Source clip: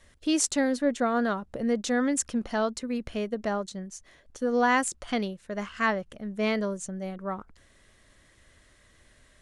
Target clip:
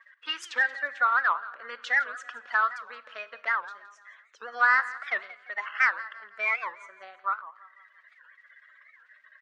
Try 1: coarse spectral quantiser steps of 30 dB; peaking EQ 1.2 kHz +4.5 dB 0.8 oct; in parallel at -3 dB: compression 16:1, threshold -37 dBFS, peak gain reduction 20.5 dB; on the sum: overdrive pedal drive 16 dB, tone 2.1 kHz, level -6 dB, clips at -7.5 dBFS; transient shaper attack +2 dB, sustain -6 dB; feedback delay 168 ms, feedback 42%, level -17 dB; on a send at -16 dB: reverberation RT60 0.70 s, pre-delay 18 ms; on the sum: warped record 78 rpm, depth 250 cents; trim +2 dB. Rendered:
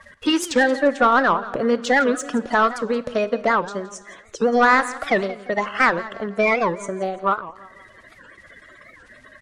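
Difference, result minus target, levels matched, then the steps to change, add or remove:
2 kHz band -3.5 dB
add after coarse spectral quantiser: ladder band-pass 1.9 kHz, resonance 35%

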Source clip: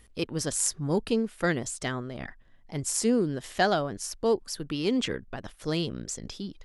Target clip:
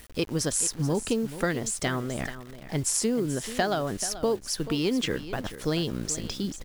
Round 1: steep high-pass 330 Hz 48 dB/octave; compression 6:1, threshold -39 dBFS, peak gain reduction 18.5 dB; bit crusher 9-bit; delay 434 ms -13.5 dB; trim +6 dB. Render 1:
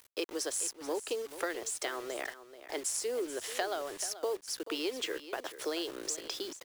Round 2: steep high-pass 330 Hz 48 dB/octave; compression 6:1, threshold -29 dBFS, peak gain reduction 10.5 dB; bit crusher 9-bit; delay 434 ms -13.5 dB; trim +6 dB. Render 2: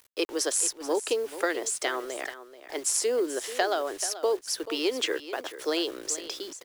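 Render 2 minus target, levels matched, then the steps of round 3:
250 Hz band -6.5 dB
compression 6:1, threshold -29 dBFS, peak gain reduction 10.5 dB; bit crusher 9-bit; delay 434 ms -13.5 dB; trim +6 dB

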